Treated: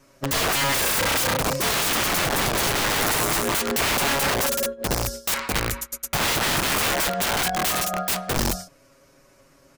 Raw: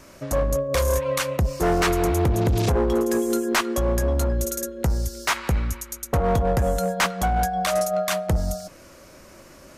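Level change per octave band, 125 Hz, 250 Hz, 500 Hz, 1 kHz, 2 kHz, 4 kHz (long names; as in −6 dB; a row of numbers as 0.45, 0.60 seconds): −7.0, −4.5, −4.5, +1.0, +6.0, +9.0 decibels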